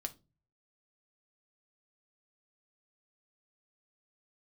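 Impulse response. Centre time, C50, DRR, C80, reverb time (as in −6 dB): 4 ms, 19.0 dB, 6.0 dB, 27.5 dB, 0.30 s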